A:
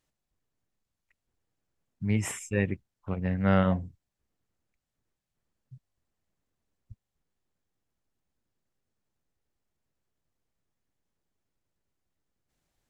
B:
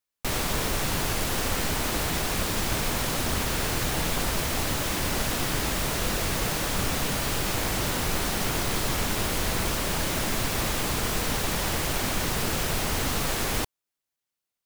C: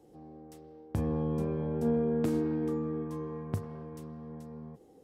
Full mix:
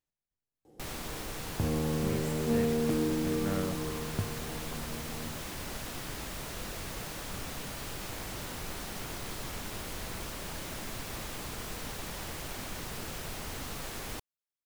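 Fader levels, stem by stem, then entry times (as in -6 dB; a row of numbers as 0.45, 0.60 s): -12.5, -12.5, 0.0 dB; 0.00, 0.55, 0.65 s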